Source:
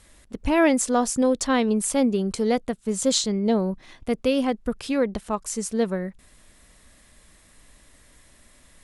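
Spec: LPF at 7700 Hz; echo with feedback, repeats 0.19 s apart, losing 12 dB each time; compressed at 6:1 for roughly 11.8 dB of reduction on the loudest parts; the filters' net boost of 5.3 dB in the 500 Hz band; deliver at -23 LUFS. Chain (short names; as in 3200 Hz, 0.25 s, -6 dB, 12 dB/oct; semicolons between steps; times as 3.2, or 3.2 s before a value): LPF 7700 Hz; bell 500 Hz +6 dB; compressor 6:1, threshold -25 dBFS; feedback echo 0.19 s, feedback 25%, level -12 dB; gain +6.5 dB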